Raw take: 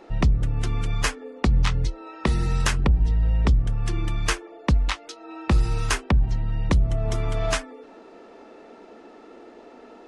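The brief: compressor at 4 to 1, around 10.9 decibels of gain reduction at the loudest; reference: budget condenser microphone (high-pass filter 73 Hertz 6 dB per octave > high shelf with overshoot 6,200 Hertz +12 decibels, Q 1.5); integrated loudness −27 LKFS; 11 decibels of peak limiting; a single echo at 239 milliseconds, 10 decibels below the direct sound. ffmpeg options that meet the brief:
ffmpeg -i in.wav -af "acompressor=threshold=-28dB:ratio=4,alimiter=level_in=1.5dB:limit=-24dB:level=0:latency=1,volume=-1.5dB,highpass=frequency=73:poles=1,highshelf=frequency=6200:width_type=q:width=1.5:gain=12,aecho=1:1:239:0.316,volume=11dB" out.wav

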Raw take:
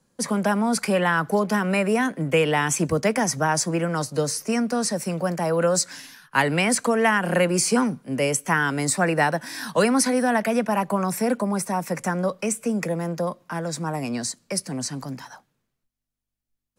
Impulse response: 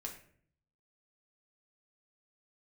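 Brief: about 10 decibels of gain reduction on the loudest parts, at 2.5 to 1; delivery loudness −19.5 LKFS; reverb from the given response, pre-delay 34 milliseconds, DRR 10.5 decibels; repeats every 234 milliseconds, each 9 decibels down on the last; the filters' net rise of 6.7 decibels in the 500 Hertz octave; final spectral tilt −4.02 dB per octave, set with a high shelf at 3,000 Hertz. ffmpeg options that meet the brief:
-filter_complex "[0:a]equalizer=frequency=500:width_type=o:gain=7.5,highshelf=frequency=3000:gain=3.5,acompressor=threshold=-25dB:ratio=2.5,aecho=1:1:234|468|702|936:0.355|0.124|0.0435|0.0152,asplit=2[link_01][link_02];[1:a]atrim=start_sample=2205,adelay=34[link_03];[link_02][link_03]afir=irnorm=-1:irlink=0,volume=-8.5dB[link_04];[link_01][link_04]amix=inputs=2:normalize=0,volume=6dB"

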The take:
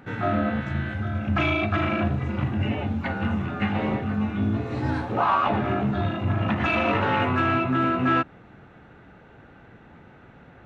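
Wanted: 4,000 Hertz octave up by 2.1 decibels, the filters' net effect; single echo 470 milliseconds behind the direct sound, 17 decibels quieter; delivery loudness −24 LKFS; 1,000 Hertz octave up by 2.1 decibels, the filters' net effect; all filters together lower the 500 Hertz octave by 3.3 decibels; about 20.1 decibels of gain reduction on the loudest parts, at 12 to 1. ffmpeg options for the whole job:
ffmpeg -i in.wav -af "equalizer=frequency=500:width_type=o:gain=-7,equalizer=frequency=1000:width_type=o:gain=4.5,equalizer=frequency=4000:width_type=o:gain=3,acompressor=threshold=-36dB:ratio=12,aecho=1:1:470:0.141,volume=16.5dB" out.wav

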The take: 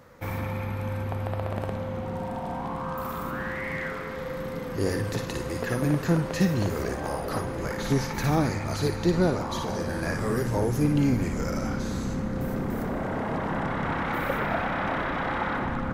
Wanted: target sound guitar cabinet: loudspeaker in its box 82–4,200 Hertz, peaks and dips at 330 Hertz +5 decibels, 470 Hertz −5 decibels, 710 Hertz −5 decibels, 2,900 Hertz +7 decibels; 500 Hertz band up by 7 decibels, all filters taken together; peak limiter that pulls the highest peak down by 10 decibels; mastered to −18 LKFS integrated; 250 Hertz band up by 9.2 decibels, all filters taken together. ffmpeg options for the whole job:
ffmpeg -i in.wav -af "equalizer=frequency=250:width_type=o:gain=7.5,equalizer=frequency=500:width_type=o:gain=8.5,alimiter=limit=-14.5dB:level=0:latency=1,highpass=82,equalizer=frequency=330:width_type=q:width=4:gain=5,equalizer=frequency=470:width_type=q:width=4:gain=-5,equalizer=frequency=710:width_type=q:width=4:gain=-5,equalizer=frequency=2900:width_type=q:width=4:gain=7,lowpass=frequency=4200:width=0.5412,lowpass=frequency=4200:width=1.3066,volume=7dB" out.wav

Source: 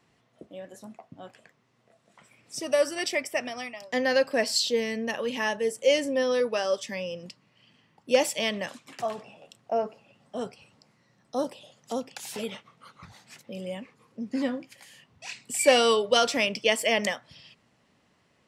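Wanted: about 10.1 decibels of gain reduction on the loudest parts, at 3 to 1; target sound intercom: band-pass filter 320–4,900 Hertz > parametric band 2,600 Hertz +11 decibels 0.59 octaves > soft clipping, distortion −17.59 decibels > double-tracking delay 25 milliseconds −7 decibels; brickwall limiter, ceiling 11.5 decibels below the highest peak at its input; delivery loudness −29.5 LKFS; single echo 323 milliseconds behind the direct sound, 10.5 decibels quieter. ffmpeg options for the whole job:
ffmpeg -i in.wav -filter_complex "[0:a]acompressor=threshold=-29dB:ratio=3,alimiter=level_in=2.5dB:limit=-24dB:level=0:latency=1,volume=-2.5dB,highpass=320,lowpass=4900,equalizer=frequency=2600:width_type=o:width=0.59:gain=11,aecho=1:1:323:0.299,asoftclip=threshold=-26.5dB,asplit=2[link_01][link_02];[link_02]adelay=25,volume=-7dB[link_03];[link_01][link_03]amix=inputs=2:normalize=0,volume=7dB" out.wav

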